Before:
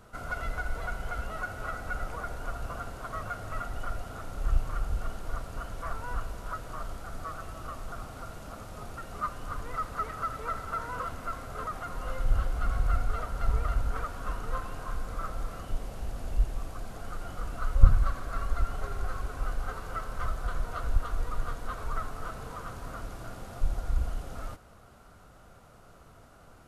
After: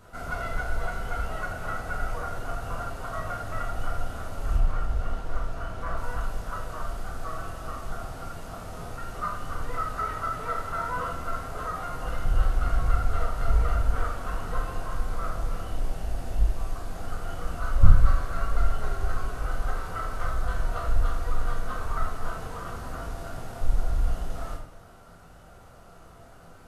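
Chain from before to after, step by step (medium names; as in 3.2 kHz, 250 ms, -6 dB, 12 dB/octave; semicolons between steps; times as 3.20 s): 4.56–5.97 s: treble shelf 6.1 kHz -10 dB; reverberation RT60 0.55 s, pre-delay 10 ms, DRR -1.5 dB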